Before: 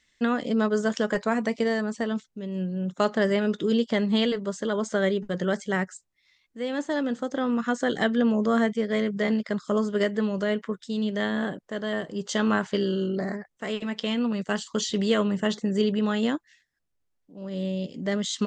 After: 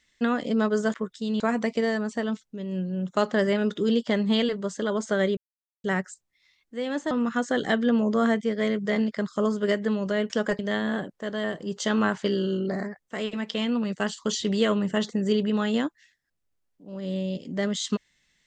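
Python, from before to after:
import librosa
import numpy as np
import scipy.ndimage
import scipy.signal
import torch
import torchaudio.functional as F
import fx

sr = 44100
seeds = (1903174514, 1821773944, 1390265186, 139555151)

y = fx.edit(x, sr, fx.swap(start_s=0.94, length_s=0.29, other_s=10.62, other_length_s=0.46),
    fx.silence(start_s=5.2, length_s=0.47),
    fx.cut(start_s=6.94, length_s=0.49), tone=tone)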